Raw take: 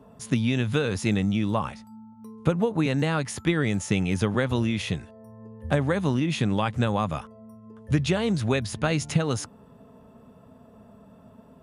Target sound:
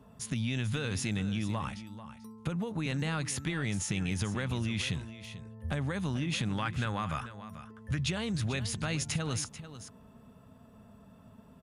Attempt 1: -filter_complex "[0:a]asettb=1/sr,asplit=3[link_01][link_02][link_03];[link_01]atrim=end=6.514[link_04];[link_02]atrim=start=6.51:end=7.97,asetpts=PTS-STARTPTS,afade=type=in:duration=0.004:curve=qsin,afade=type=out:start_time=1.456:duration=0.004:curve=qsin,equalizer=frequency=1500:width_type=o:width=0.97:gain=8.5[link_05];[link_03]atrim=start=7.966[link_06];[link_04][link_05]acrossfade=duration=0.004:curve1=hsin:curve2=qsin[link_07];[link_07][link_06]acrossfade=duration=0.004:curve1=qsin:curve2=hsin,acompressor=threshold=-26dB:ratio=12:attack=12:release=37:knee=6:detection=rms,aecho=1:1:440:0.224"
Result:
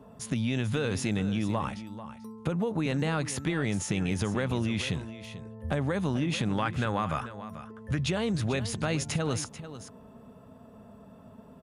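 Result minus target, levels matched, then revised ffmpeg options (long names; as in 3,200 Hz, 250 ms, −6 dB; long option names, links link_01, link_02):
500 Hz band +5.0 dB
-filter_complex "[0:a]asettb=1/sr,asplit=3[link_01][link_02][link_03];[link_01]atrim=end=6.514[link_04];[link_02]atrim=start=6.51:end=7.97,asetpts=PTS-STARTPTS,afade=type=in:duration=0.004:curve=qsin,afade=type=out:start_time=1.456:duration=0.004:curve=qsin,equalizer=frequency=1500:width_type=o:width=0.97:gain=8.5[link_05];[link_03]atrim=start=7.966[link_06];[link_04][link_05]acrossfade=duration=0.004:curve1=hsin:curve2=qsin[link_07];[link_07][link_06]acrossfade=duration=0.004:curve1=qsin:curve2=hsin,acompressor=threshold=-26dB:ratio=12:attack=12:release=37:knee=6:detection=rms,equalizer=frequency=490:width_type=o:width=2.5:gain=-8.5,aecho=1:1:440:0.224"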